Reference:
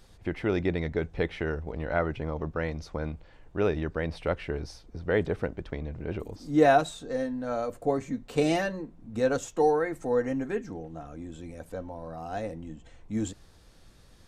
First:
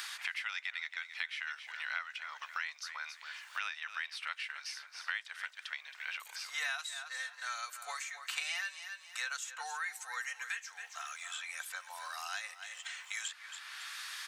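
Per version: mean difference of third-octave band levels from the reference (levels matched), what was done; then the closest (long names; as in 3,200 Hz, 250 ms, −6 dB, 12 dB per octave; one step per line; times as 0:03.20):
21.5 dB: Bessel high-pass filter 2,100 Hz, order 6
repeating echo 271 ms, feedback 16%, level −14 dB
multiband upward and downward compressor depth 100%
level +5 dB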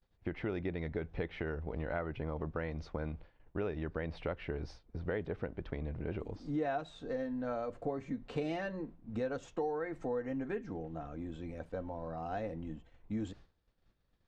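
4.0 dB: low-pass filter 3,500 Hz 12 dB per octave
downward expander −42 dBFS
downward compressor 4 to 1, threshold −33 dBFS, peak gain reduction 15 dB
level −1.5 dB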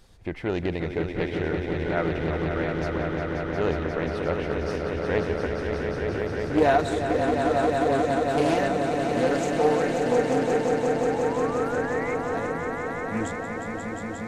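9.5 dB: sound drawn into the spectrogram rise, 0:10.91–0:12.15, 640–2,200 Hz −36 dBFS
echo that builds up and dies away 178 ms, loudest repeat 5, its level −6.5 dB
highs frequency-modulated by the lows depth 0.31 ms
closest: second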